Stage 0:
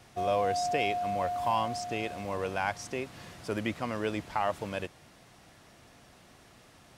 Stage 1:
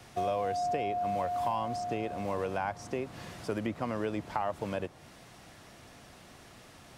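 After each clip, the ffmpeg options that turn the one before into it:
-filter_complex "[0:a]acrossover=split=88|1300[s0][s1][s2];[s0]acompressor=threshold=0.00112:ratio=4[s3];[s1]acompressor=threshold=0.0224:ratio=4[s4];[s2]acompressor=threshold=0.00282:ratio=4[s5];[s3][s4][s5]amix=inputs=3:normalize=0,volume=1.5"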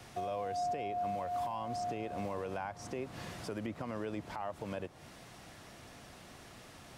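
-af "alimiter=level_in=1.78:limit=0.0631:level=0:latency=1:release=182,volume=0.562"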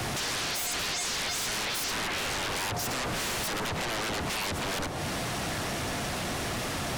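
-af "aeval=exprs='0.0376*sin(PI/2*10*val(0)/0.0376)':c=same"

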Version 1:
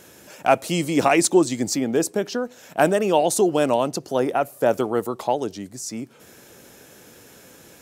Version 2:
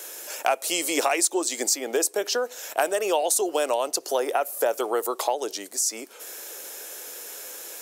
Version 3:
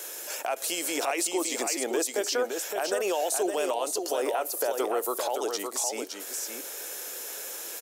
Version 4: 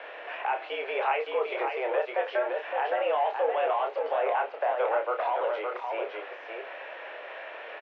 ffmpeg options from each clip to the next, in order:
-af "highpass=f=400:w=0.5412,highpass=f=400:w=1.3066,highshelf=f=5400:g=11,acompressor=threshold=0.0501:ratio=4,volume=1.68"
-af "alimiter=limit=0.106:level=0:latency=1:release=59,aecho=1:1:564:0.531"
-filter_complex "[0:a]aeval=exprs='val(0)+0.5*0.0266*sgn(val(0))':c=same,asplit=2[s0][s1];[s1]adelay=29,volume=0.531[s2];[s0][s2]amix=inputs=2:normalize=0,highpass=f=180:t=q:w=0.5412,highpass=f=180:t=q:w=1.307,lowpass=f=2600:t=q:w=0.5176,lowpass=f=2600:t=q:w=0.7071,lowpass=f=2600:t=q:w=1.932,afreqshift=120,volume=0.841"

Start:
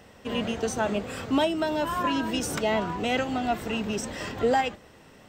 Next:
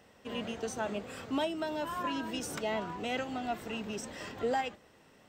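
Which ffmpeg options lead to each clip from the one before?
-af "lowshelf=f=110:g=-7,volume=0.398"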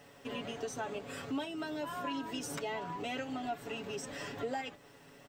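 -af "aecho=1:1:7.1:0.73,acrusher=bits=11:mix=0:aa=0.000001,acompressor=threshold=0.00708:ratio=2,volume=1.26"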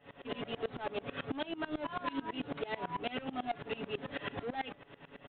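-af "aresample=8000,asoftclip=type=tanh:threshold=0.0126,aresample=44100,aeval=exprs='val(0)*pow(10,-23*if(lt(mod(-9.1*n/s,1),2*abs(-9.1)/1000),1-mod(-9.1*n/s,1)/(2*abs(-9.1)/1000),(mod(-9.1*n/s,1)-2*abs(-9.1)/1000)/(1-2*abs(-9.1)/1000))/20)':c=same,volume=3.55"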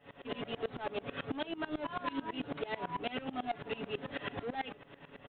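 -filter_complex "[0:a]asplit=2[s0][s1];[s1]adelay=816.3,volume=0.0631,highshelf=f=4000:g=-18.4[s2];[s0][s2]amix=inputs=2:normalize=0"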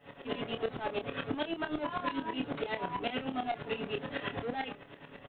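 -filter_complex "[0:a]asplit=2[s0][s1];[s1]adelay=27,volume=0.398[s2];[s0][s2]amix=inputs=2:normalize=0,volume=1.33"

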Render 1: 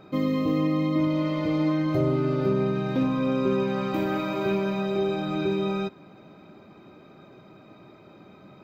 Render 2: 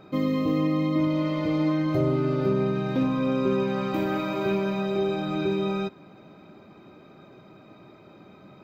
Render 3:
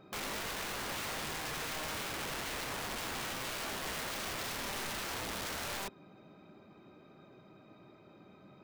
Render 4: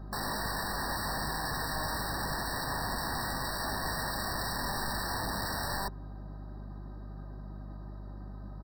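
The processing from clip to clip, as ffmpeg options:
-af anull
-af "aeval=exprs='(mod(21.1*val(0)+1,2)-1)/21.1':c=same,volume=0.398"
-af "aeval=exprs='val(0)+0.00316*(sin(2*PI*50*n/s)+sin(2*PI*2*50*n/s)/2+sin(2*PI*3*50*n/s)/3+sin(2*PI*4*50*n/s)/4+sin(2*PI*5*50*n/s)/5)':c=same,aecho=1:1:1.1:0.43,afftfilt=real='re*eq(mod(floor(b*sr/1024/1900),2),0)':imag='im*eq(mod(floor(b*sr/1024/1900),2),0)':win_size=1024:overlap=0.75,volume=1.88"

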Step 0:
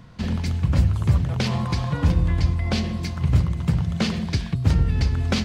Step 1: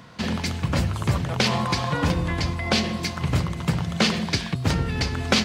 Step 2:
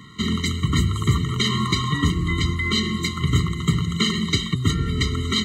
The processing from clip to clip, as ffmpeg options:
-af "highpass=f=400:p=1,volume=2.24"
-af "superequalizer=9b=0.355:11b=1.58:13b=2.24:14b=0.398:15b=2,alimiter=limit=0.335:level=0:latency=1:release=205,afftfilt=real='re*eq(mod(floor(b*sr/1024/460),2),0)':imag='im*eq(mod(floor(b*sr/1024/460),2),0)':win_size=1024:overlap=0.75,volume=1.5"

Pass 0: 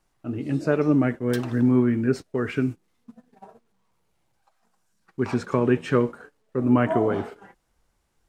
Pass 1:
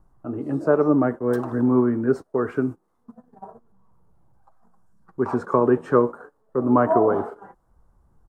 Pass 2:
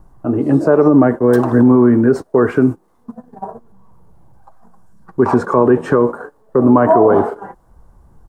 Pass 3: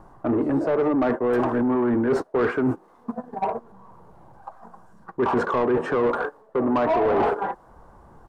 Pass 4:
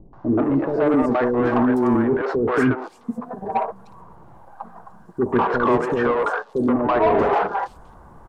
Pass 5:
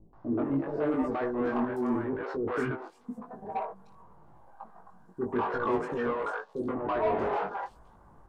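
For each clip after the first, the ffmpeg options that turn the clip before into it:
-filter_complex "[0:a]firequalizer=gain_entry='entry(120,0);entry(390,8);entry(1100,12);entry(2300,-12);entry(9300,-2)':delay=0.05:min_phase=1,acrossover=split=190|1300[s0][s1][s2];[s0]acompressor=mode=upward:threshold=0.0141:ratio=2.5[s3];[s3][s1][s2]amix=inputs=3:normalize=0,volume=0.631"
-af "equalizer=f=1300:w=7.8:g=-5.5,alimiter=level_in=5.01:limit=0.891:release=50:level=0:latency=1,volume=0.891"
-filter_complex "[0:a]areverse,acompressor=threshold=0.141:ratio=16,areverse,asplit=2[s0][s1];[s1]highpass=f=720:p=1,volume=8.91,asoftclip=type=tanh:threshold=0.299[s2];[s0][s2]amix=inputs=2:normalize=0,lowpass=f=1400:p=1,volume=0.501,volume=0.75"
-filter_complex "[0:a]acrossover=split=470|4900[s0][s1][s2];[s1]adelay=130[s3];[s2]adelay=430[s4];[s0][s3][s4]amix=inputs=3:normalize=0,volume=1.68"
-af "flanger=delay=18.5:depth=3.1:speed=0.89,volume=0.398"

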